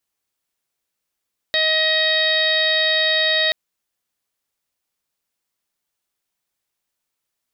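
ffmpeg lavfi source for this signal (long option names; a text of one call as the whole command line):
ffmpeg -f lavfi -i "aevalsrc='0.0708*sin(2*PI*630*t)+0.0126*sin(2*PI*1260*t)+0.1*sin(2*PI*1890*t)+0.0282*sin(2*PI*2520*t)+0.0316*sin(2*PI*3150*t)+0.112*sin(2*PI*3780*t)+0.0473*sin(2*PI*4410*t)+0.0141*sin(2*PI*5040*t)':duration=1.98:sample_rate=44100" out.wav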